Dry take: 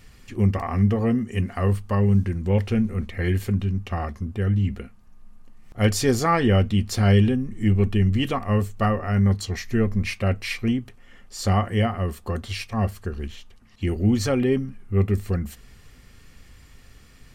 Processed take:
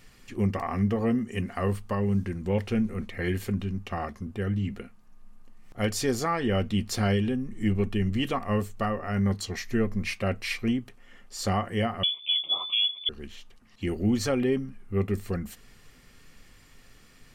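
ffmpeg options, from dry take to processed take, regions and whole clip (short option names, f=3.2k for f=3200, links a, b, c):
-filter_complex "[0:a]asettb=1/sr,asplit=3[a][b][c];[a]atrim=end=12.034[d];[b]atrim=start=12.03:end=13.09,asetpts=PTS-STARTPTS,afade=t=in:d=0.004:c=qsin,afade=t=out:st=1.056:d=0.004:c=qsin,asuperstop=centerf=1800:order=20:qfactor=2.4,lowshelf=f=250:g=10.5,lowpass=f=3k:t=q:w=0.5098,lowpass=f=3k:t=q:w=0.6013,lowpass=f=3k:t=q:w=0.9,lowpass=f=3k:t=q:w=2.563,afreqshift=-3500[e];[c]atrim=start=13.086[f];[d][e]acrossfade=d=0.004:c1=hsin:c2=qsin[g];[g][f]acrossfade=d=0.004:c1=qsin:c2=hsin,equalizer=f=62:w=0.87:g=-11.5,alimiter=limit=-14dB:level=0:latency=1:release=393,volume=-2dB"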